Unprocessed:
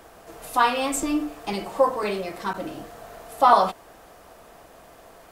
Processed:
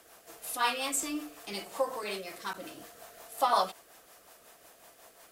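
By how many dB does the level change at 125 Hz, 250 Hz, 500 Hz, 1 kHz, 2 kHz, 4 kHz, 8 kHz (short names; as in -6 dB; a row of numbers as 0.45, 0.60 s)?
under -10 dB, -12.5 dB, -11.0 dB, -10.5 dB, -7.0 dB, -3.0 dB, -1.5 dB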